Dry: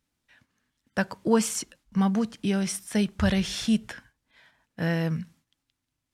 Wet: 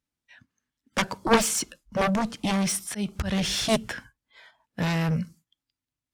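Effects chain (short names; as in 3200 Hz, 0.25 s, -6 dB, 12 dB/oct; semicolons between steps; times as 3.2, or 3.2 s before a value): 2.54–3.58 auto swell 0.219 s; added harmonics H 7 -7 dB, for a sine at -9.5 dBFS; spectral noise reduction 15 dB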